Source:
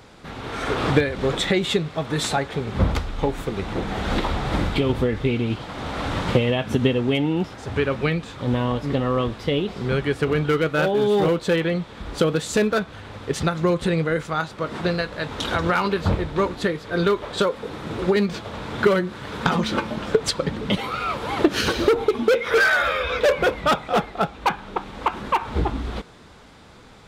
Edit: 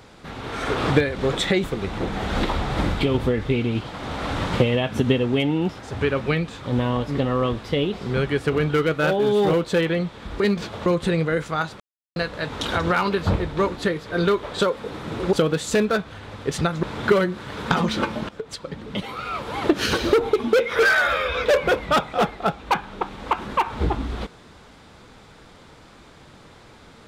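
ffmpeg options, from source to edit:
ffmpeg -i in.wav -filter_complex "[0:a]asplit=9[link_01][link_02][link_03][link_04][link_05][link_06][link_07][link_08][link_09];[link_01]atrim=end=1.642[link_10];[link_02]atrim=start=3.388:end=12.152[link_11];[link_03]atrim=start=18.118:end=18.582[link_12];[link_04]atrim=start=13.648:end=14.59,asetpts=PTS-STARTPTS,afade=type=out:start_time=0.938:duration=0.004:curve=hsin[link_13];[link_05]atrim=start=14.59:end=14.95,asetpts=PTS-STARTPTS,volume=0[link_14];[link_06]atrim=start=14.95:end=18.122,asetpts=PTS-STARTPTS,afade=type=in:duration=0.004:curve=hsin[link_15];[link_07]atrim=start=12.148:end=13.652[link_16];[link_08]atrim=start=18.578:end=20.04,asetpts=PTS-STARTPTS,afade=type=out:start_time=1.458:duration=0.004:curve=hsin:silence=0.141254[link_17];[link_09]atrim=start=20.04,asetpts=PTS-STARTPTS,afade=type=in:duration=1.64:silence=0.141254[link_18];[link_10][link_11]acrossfade=duration=0.004:curve1=hsin:curve2=hsin[link_19];[link_19][link_12]acrossfade=duration=0.004:curve1=hsin:curve2=hsin[link_20];[link_13][link_14][link_15]concat=n=3:v=0:a=1[link_21];[link_20][link_21]acrossfade=duration=0.004:curve1=hsin:curve2=hsin[link_22];[link_22][link_16]acrossfade=duration=0.004:curve1=hsin:curve2=hsin[link_23];[link_17][link_18]concat=n=2:v=0:a=1[link_24];[link_23][link_24]acrossfade=duration=0.004:curve1=hsin:curve2=hsin" out.wav

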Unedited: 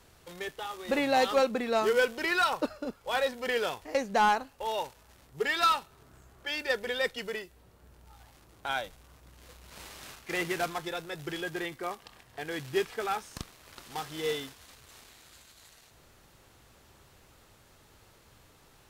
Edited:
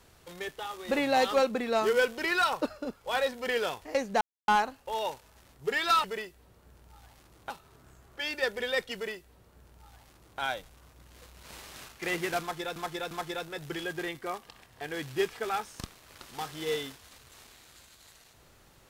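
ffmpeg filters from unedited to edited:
ffmpeg -i in.wav -filter_complex "[0:a]asplit=6[link_01][link_02][link_03][link_04][link_05][link_06];[link_01]atrim=end=4.21,asetpts=PTS-STARTPTS,afade=type=out:start_time=4.206:duration=0.004:curve=hsin,apad=pad_dur=0.27[link_07];[link_02]atrim=start=4.21:end=5.772,asetpts=PTS-STARTPTS,afade=type=in:duration=0.004:curve=hsin[link_08];[link_03]atrim=start=7.208:end=8.672[link_09];[link_04]atrim=start=5.768:end=11.032[link_10];[link_05]atrim=start=10.678:end=11.032[link_11];[link_06]atrim=start=10.678[link_12];[link_07][link_08]concat=n=2:v=0:a=1[link_13];[link_13][link_09]acrossfade=duration=0.004:curve1=hsin:curve2=hsin[link_14];[link_14][link_10]acrossfade=duration=0.004:curve1=hsin:curve2=hsin[link_15];[link_15][link_11]acrossfade=duration=0.004:curve1=hsin:curve2=hsin[link_16];[link_16][link_12]acrossfade=duration=0.004:curve1=hsin:curve2=hsin" out.wav

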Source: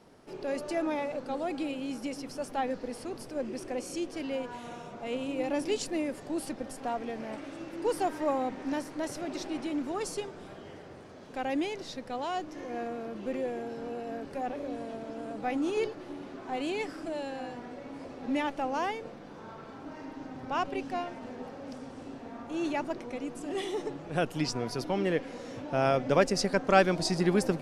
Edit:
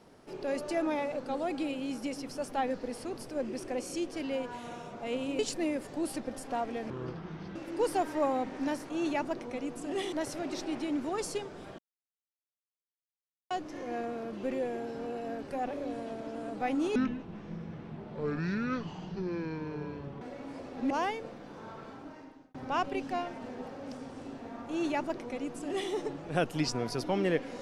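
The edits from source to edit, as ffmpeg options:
ffmpeg -i in.wav -filter_complex "[0:a]asplit=12[link_01][link_02][link_03][link_04][link_05][link_06][link_07][link_08][link_09][link_10][link_11][link_12];[link_01]atrim=end=5.392[link_13];[link_02]atrim=start=5.718:end=7.234[link_14];[link_03]atrim=start=7.23:end=7.61,asetpts=PTS-STARTPTS,asetrate=25578,aresample=44100,atrim=end_sample=28893,asetpts=PTS-STARTPTS[link_15];[link_04]atrim=start=7.606:end=8.952[link_16];[link_05]atrim=start=22.488:end=23.722[link_17];[link_06]atrim=start=8.948:end=10.61,asetpts=PTS-STARTPTS,afade=type=out:start_time=1.658:duration=0.004:curve=hsin[link_18];[link_07]atrim=start=10.61:end=12.33,asetpts=PTS-STARTPTS,volume=0[link_19];[link_08]atrim=start=12.33:end=15.784,asetpts=PTS-STARTPTS,afade=type=in:duration=0.004:curve=hsin[link_20];[link_09]atrim=start=15.78:end=17.67,asetpts=PTS-STARTPTS,asetrate=25578,aresample=44100,atrim=end_sample=143705,asetpts=PTS-STARTPTS[link_21];[link_10]atrim=start=17.666:end=18.362[link_22];[link_11]atrim=start=18.708:end=20.35,asetpts=PTS-STARTPTS,afade=type=out:start_time=0.952:duration=0.69[link_23];[link_12]atrim=start=20.35,asetpts=PTS-STARTPTS,afade=type=in:duration=0.004:curve=hsin[link_24];[link_13][link_14]acrossfade=duration=0.004:curve1=hsin:curve2=hsin[link_25];[link_25][link_15]acrossfade=duration=0.004:curve1=hsin:curve2=hsin[link_26];[link_26][link_16]acrossfade=duration=0.004:curve1=hsin:curve2=hsin[link_27];[link_27][link_17]acrossfade=duration=0.004:curve1=hsin:curve2=hsin[link_28];[link_18][link_19][link_20]concat=n=3:v=0:a=1[link_29];[link_28][link_29]acrossfade=duration=0.004:curve1=hsin:curve2=hsin[link_30];[link_30][link_21]acrossfade=duration=0.004:curve1=hsin:curve2=hsin[link_31];[link_31][link_22]acrossfade=duration=0.004:curve1=hsin:curve2=hsin[link_32];[link_23][link_24]concat=n=2:v=0:a=1[link_33];[link_32][link_33]acrossfade=duration=0.004:curve1=hsin:curve2=hsin" out.wav

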